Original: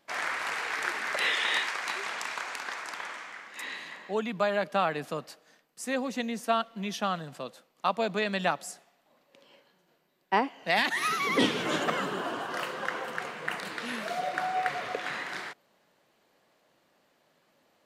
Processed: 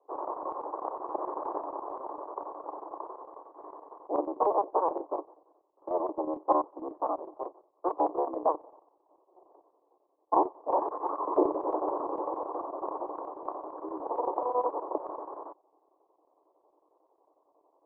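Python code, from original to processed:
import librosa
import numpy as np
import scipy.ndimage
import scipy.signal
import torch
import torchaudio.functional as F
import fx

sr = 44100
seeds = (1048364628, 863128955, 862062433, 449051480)

y = fx.cycle_switch(x, sr, every=3, mode='inverted')
y = scipy.signal.sosfilt(scipy.signal.cheby1(5, 1.0, [300.0, 1100.0], 'bandpass', fs=sr, output='sos'), y)
y = fx.chopper(y, sr, hz=11.0, depth_pct=60, duty_pct=75)
y = y * 10.0 ** (4.0 / 20.0)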